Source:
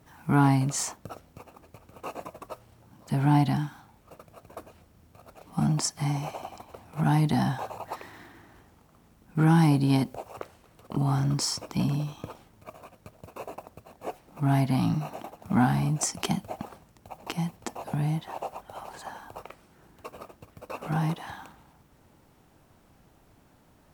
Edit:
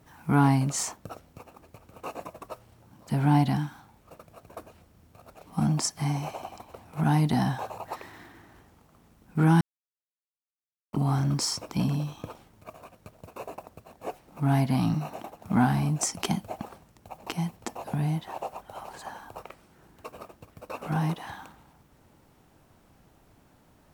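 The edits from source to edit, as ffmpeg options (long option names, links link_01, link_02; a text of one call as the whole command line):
ffmpeg -i in.wav -filter_complex "[0:a]asplit=3[link_01][link_02][link_03];[link_01]atrim=end=9.61,asetpts=PTS-STARTPTS,afade=type=out:start_time=9.606:duration=0.004:curve=hsin[link_04];[link_02]atrim=start=9.61:end=10.93,asetpts=PTS-STARTPTS,volume=0[link_05];[link_03]atrim=start=10.93,asetpts=PTS-STARTPTS,afade=type=in:duration=0.004:curve=hsin[link_06];[link_04][link_05][link_06]concat=n=3:v=0:a=1" out.wav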